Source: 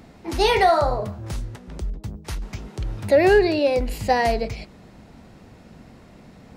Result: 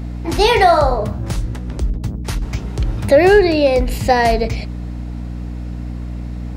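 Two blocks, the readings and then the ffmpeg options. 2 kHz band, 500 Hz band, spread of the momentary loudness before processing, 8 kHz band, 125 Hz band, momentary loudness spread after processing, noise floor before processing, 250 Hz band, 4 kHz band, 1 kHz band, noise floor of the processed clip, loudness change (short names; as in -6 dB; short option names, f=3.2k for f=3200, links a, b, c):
+5.5 dB, +5.5 dB, 17 LU, +6.5 dB, +10.0 dB, 17 LU, -48 dBFS, +7.0 dB, +6.0 dB, +5.5 dB, -26 dBFS, +5.0 dB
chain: -filter_complex "[0:a]aeval=exprs='val(0)+0.0251*(sin(2*PI*60*n/s)+sin(2*PI*2*60*n/s)/2+sin(2*PI*3*60*n/s)/3+sin(2*PI*4*60*n/s)/4+sin(2*PI*5*60*n/s)/5)':c=same,asplit=2[a][b];[b]alimiter=limit=-14.5dB:level=0:latency=1:release=430,volume=-3dB[c];[a][c]amix=inputs=2:normalize=0,volume=3dB"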